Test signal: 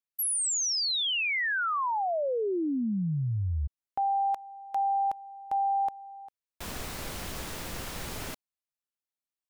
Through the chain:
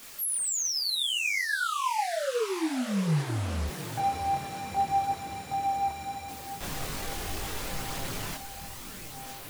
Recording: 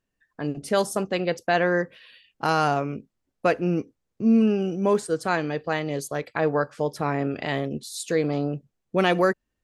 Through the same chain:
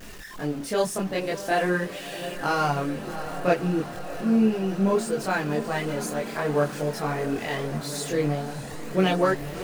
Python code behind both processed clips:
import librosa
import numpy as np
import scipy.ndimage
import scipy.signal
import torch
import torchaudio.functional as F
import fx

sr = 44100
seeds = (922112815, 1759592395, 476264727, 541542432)

y = x + 0.5 * 10.0 ** (-32.5 / 20.0) * np.sign(x)
y = fx.echo_diffused(y, sr, ms=675, feedback_pct=77, wet_db=-12.5)
y = fx.chorus_voices(y, sr, voices=4, hz=0.39, base_ms=24, depth_ms=3.8, mix_pct=55)